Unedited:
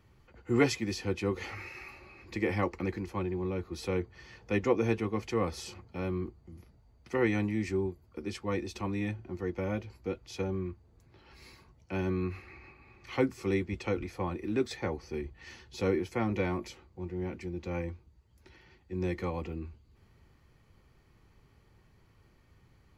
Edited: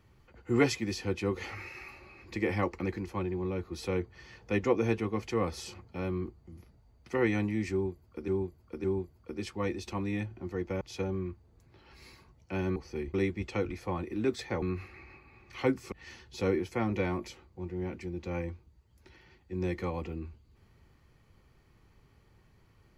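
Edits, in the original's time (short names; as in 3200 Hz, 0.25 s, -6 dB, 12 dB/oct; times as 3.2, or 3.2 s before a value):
7.72–8.28 loop, 3 plays
9.69–10.21 cut
12.16–13.46 swap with 14.94–15.32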